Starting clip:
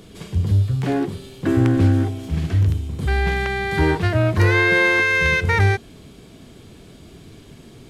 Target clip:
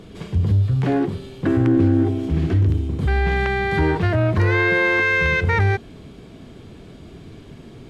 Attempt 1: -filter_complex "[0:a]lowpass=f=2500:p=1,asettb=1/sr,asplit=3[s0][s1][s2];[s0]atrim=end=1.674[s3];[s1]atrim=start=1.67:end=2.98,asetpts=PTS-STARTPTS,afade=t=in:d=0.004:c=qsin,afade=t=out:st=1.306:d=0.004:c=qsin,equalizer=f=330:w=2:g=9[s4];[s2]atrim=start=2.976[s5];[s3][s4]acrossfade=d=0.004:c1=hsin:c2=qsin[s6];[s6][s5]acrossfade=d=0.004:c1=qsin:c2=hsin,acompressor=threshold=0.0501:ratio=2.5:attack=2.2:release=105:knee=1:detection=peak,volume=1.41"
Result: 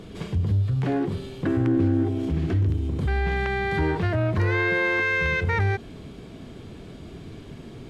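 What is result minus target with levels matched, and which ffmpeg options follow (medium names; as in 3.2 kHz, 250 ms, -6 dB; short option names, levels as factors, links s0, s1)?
compression: peak gain reduction +5 dB
-filter_complex "[0:a]lowpass=f=2500:p=1,asettb=1/sr,asplit=3[s0][s1][s2];[s0]atrim=end=1.674[s3];[s1]atrim=start=1.67:end=2.98,asetpts=PTS-STARTPTS,afade=t=in:d=0.004:c=qsin,afade=t=out:st=1.306:d=0.004:c=qsin,equalizer=f=330:w=2:g=9[s4];[s2]atrim=start=2.976[s5];[s3][s4]acrossfade=d=0.004:c1=hsin:c2=qsin[s6];[s6][s5]acrossfade=d=0.004:c1=qsin:c2=hsin,acompressor=threshold=0.133:ratio=2.5:attack=2.2:release=105:knee=1:detection=peak,volume=1.41"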